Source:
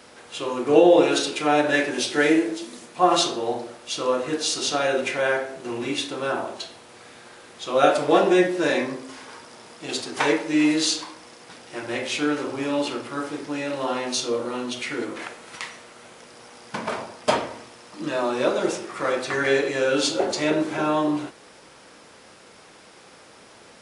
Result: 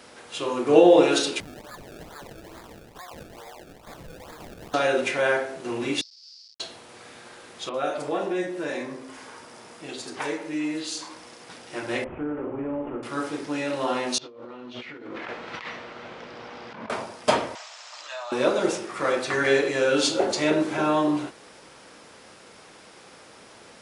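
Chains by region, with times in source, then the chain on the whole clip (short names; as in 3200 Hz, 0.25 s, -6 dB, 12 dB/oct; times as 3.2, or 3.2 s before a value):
1.4–4.74 HPF 1000 Hz + decimation with a swept rate 30× 2.3 Hz + compressor 10:1, threshold -39 dBFS
6.01–6.6 Schmitt trigger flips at -31 dBFS + Butterworth band-pass 4900 Hz, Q 5.2
7.69–11.11 compressor 1.5:1, threshold -41 dBFS + bands offset in time lows, highs 50 ms, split 4000 Hz
12.04–13.03 CVSD 16 kbps + Bessel low-pass 800 Hz + compressor 4:1, threshold -26 dBFS
14.18–16.9 negative-ratio compressor -38 dBFS + Bessel low-pass 3100 Hz, order 4
17.55–18.32 high shelf 2100 Hz +8.5 dB + compressor 12:1, threshold -29 dBFS + Chebyshev band-pass 620–7400 Hz, order 4
whole clip: dry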